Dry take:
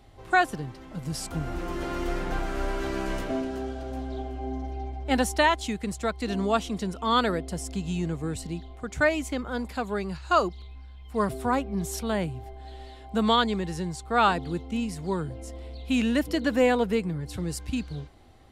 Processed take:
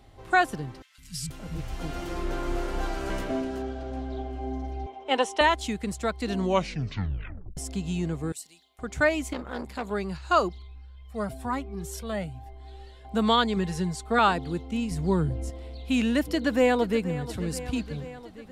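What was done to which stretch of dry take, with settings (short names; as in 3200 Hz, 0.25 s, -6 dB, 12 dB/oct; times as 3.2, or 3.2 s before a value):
0.82–3.1 three bands offset in time highs, lows, mids 0.16/0.48 s, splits 170/1900 Hz
3.62–4.33 air absorption 59 m
4.86–5.41 speaker cabinet 410–7900 Hz, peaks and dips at 450 Hz +8 dB, 1000 Hz +8 dB, 1600 Hz -4 dB, 3000 Hz +7 dB, 4600 Hz -9 dB, 7200 Hz -4 dB
6.37 tape stop 1.20 s
8.32–8.79 differentiator
9.33–9.91 core saturation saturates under 870 Hz
10.58–13.05 cascading flanger rising 1 Hz
13.56–14.19 comb 4.7 ms, depth 76%
14.91–15.5 low shelf 280 Hz +9.5 dB
16.29–17.23 echo throw 0.48 s, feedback 70%, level -14.5 dB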